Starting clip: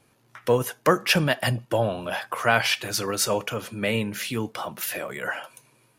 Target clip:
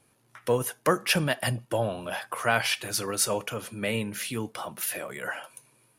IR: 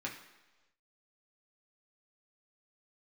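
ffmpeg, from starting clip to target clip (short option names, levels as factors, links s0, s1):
-af "equalizer=f=10000:t=o:w=0.45:g=8,volume=0.631"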